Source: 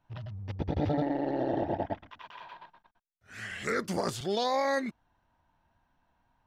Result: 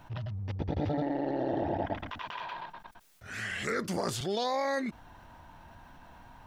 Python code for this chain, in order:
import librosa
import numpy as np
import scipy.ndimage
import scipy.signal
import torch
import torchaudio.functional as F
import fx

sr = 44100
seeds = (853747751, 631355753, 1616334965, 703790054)

y = fx.transient(x, sr, attack_db=2, sustain_db=6, at=(1.46, 2.61))
y = fx.env_flatten(y, sr, amount_pct=50)
y = y * 10.0 ** (-3.0 / 20.0)